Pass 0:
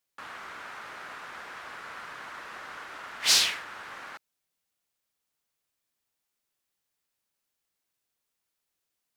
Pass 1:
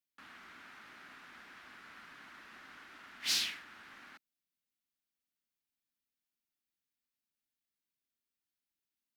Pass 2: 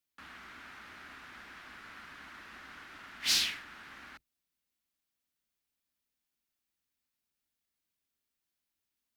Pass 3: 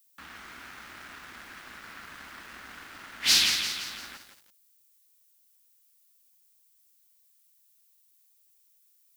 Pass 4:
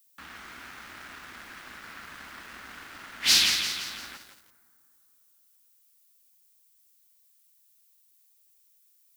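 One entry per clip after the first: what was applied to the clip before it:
graphic EQ 125/250/500/1000/8000 Hz -4/+8/-10/-6/-5 dB; gain -8.5 dB
octaver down 2 oct, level -4 dB; gain +4 dB
crossover distortion -58 dBFS; added noise violet -72 dBFS; lo-fi delay 0.171 s, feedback 55%, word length 9-bit, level -6.5 dB; gain +7 dB
reverb RT60 2.9 s, pre-delay 8 ms, DRR 18.5 dB; gain +1 dB

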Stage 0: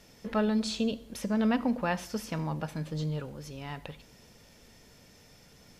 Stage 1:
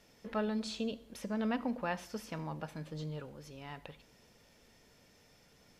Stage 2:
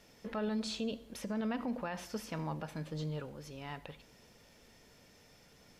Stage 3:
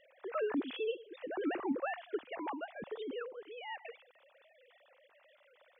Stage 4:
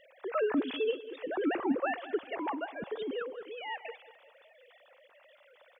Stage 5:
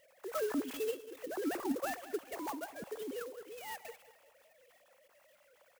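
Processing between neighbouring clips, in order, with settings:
tone controls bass -4 dB, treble -3 dB; gain -5.5 dB
limiter -31 dBFS, peak gain reduction 9.5 dB; gain +2.5 dB
sine-wave speech
feedback echo 0.194 s, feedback 40%, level -15.5 dB; gain +5 dB
clock jitter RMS 0.052 ms; gain -5.5 dB

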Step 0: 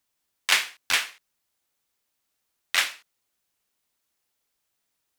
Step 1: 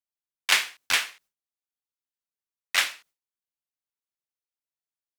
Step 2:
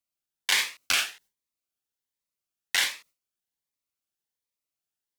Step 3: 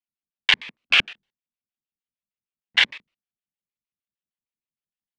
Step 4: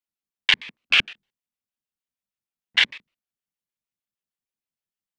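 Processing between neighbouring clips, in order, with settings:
gate with hold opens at -49 dBFS
in parallel at +2 dB: negative-ratio compressor -26 dBFS, ratio -1; on the sum: cascading phaser rising 1.3 Hz; gain -4.5 dB
LFO low-pass square 6.5 Hz 210–2900 Hz; level quantiser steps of 22 dB; gain +7 dB
dynamic EQ 750 Hz, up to -4 dB, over -36 dBFS, Q 0.79

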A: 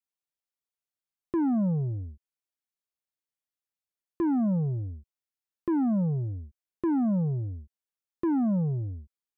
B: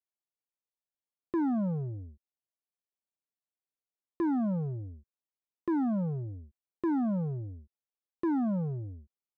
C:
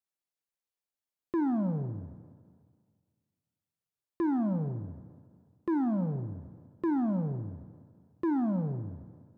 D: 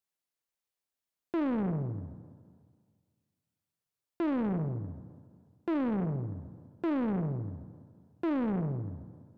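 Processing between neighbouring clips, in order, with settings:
Wiener smoothing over 25 samples; low shelf 210 Hz -8.5 dB
Schroeder reverb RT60 1.9 s, combs from 33 ms, DRR 11 dB; ending taper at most 120 dB/s
soft clip -26 dBFS, distortion -18 dB; Doppler distortion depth 0.68 ms; gain +1.5 dB

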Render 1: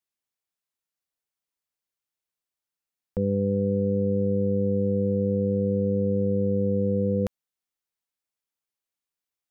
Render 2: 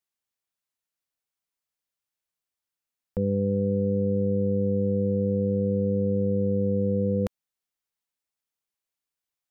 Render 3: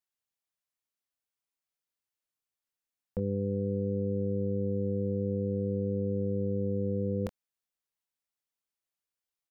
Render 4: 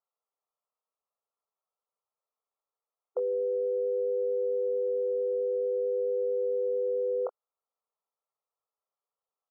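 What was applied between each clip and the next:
bell 350 Hz -2 dB
doubler 23 ms -10 dB; gain -4.5 dB
brick-wall FIR band-pass 390–1400 Hz; gain +7.5 dB

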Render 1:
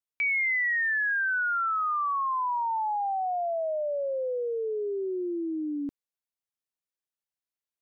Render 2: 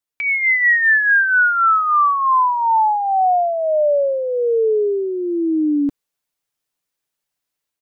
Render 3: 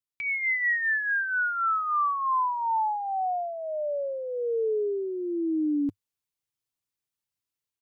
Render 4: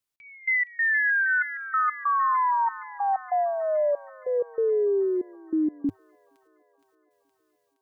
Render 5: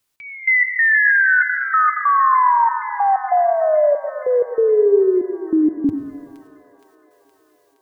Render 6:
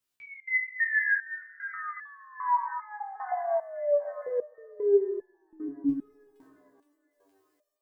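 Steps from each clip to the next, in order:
comb 6.8 ms, depth 36%; AGC gain up to 6.5 dB; gain +5.5 dB
fifteen-band EQ 100 Hz +10 dB, 630 Hz -6 dB, 1600 Hz -4 dB; gain -8.5 dB
limiter -26.5 dBFS, peak gain reduction 6 dB; step gate "x..x.xxx" 95 bpm -24 dB; thin delay 0.468 s, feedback 62%, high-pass 2000 Hz, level -8 dB; gain +7 dB
in parallel at +2 dB: compressor, threshold -35 dBFS, peak gain reduction 13 dB; on the sum: plate-style reverb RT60 1.5 s, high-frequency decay 0.8×, pre-delay 75 ms, DRR 8.5 dB; gain +6 dB
stepped resonator 2.5 Hz 67–870 Hz; gain -3 dB

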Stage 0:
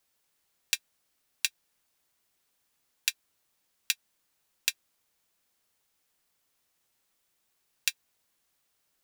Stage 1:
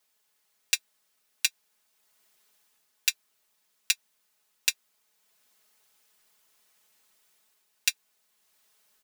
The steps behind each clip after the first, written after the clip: low shelf 250 Hz -9.5 dB; comb 4.7 ms, depth 87%; AGC gain up to 6 dB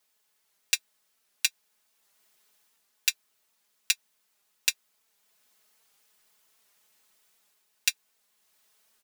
record warp 78 rpm, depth 100 cents

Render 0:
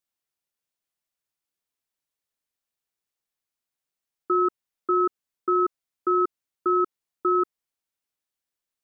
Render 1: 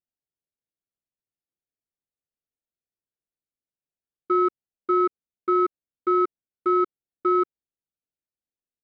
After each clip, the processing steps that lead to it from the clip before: Wiener smoothing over 41 samples; in parallel at -2 dB: level quantiser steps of 23 dB; on the sum: gain -2.5 dB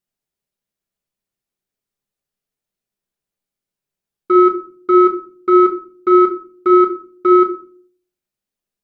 shoebox room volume 370 m³, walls furnished, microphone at 1.3 m; gain +7.5 dB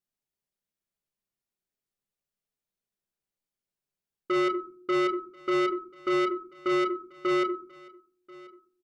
soft clip -16 dBFS, distortion -7 dB; echo 1.037 s -22.5 dB; gain -6.5 dB

